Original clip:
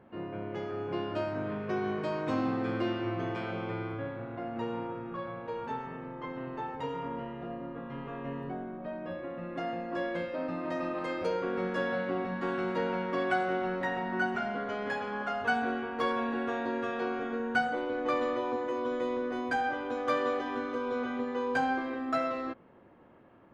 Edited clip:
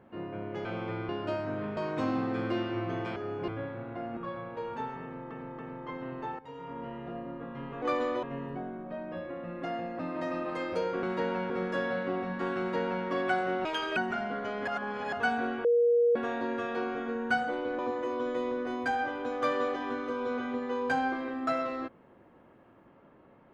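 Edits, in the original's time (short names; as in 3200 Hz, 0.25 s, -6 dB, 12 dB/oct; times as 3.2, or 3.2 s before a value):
0.65–0.97 swap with 3.46–3.9
1.65–2.07 cut
4.59–5.08 cut
5.94–6.22 loop, 3 plays
6.74–7.34 fade in, from -16 dB
9.93–10.48 cut
12.61–13.08 copy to 11.52
13.67–14.21 speed 171%
14.92–15.37 reverse
15.89–16.4 bleep 475 Hz -20.5 dBFS
18.03–18.44 move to 8.17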